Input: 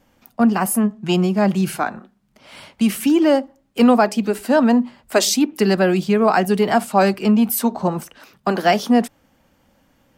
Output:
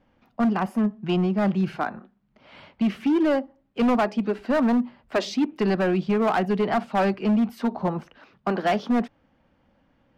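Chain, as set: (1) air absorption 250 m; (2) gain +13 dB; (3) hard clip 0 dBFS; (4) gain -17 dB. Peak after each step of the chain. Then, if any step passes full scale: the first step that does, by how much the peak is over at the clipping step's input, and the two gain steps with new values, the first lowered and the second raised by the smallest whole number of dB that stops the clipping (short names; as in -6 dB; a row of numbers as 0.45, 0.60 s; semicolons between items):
-4.0, +9.0, 0.0, -17.0 dBFS; step 2, 9.0 dB; step 2 +4 dB, step 4 -8 dB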